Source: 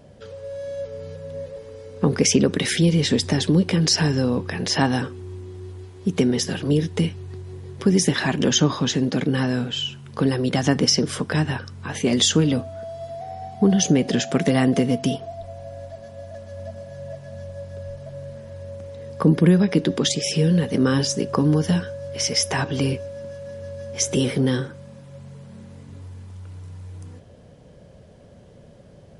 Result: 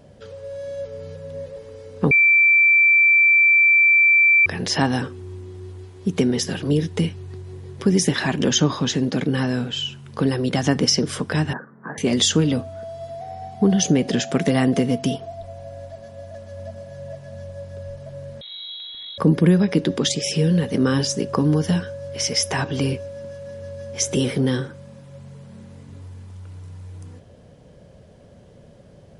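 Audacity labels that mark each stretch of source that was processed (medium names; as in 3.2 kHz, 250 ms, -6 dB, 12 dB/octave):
2.110000	4.460000	bleep 2.34 kHz -11 dBFS
11.530000	11.980000	Chebyshev band-pass 150–1800 Hz, order 5
18.410000	19.180000	frequency inversion carrier 3.9 kHz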